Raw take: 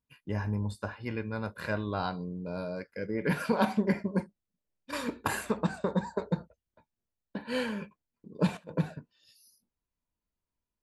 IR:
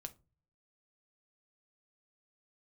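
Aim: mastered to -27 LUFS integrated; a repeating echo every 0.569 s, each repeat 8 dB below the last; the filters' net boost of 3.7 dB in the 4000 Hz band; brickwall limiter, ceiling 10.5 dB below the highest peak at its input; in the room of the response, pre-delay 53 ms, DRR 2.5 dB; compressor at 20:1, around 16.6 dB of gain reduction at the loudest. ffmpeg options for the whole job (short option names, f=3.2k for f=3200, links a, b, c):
-filter_complex "[0:a]equalizer=f=4k:t=o:g=4.5,acompressor=threshold=-38dB:ratio=20,alimiter=level_in=12dB:limit=-24dB:level=0:latency=1,volume=-12dB,aecho=1:1:569|1138|1707|2276|2845:0.398|0.159|0.0637|0.0255|0.0102,asplit=2[a][b];[1:a]atrim=start_sample=2205,adelay=53[c];[b][c]afir=irnorm=-1:irlink=0,volume=2dB[d];[a][d]amix=inputs=2:normalize=0,volume=18.5dB"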